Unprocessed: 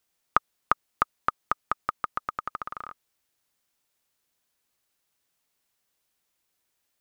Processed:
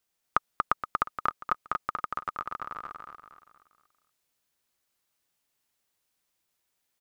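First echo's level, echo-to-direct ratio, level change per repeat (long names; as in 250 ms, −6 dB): −3.5 dB, −2.5 dB, −7.5 dB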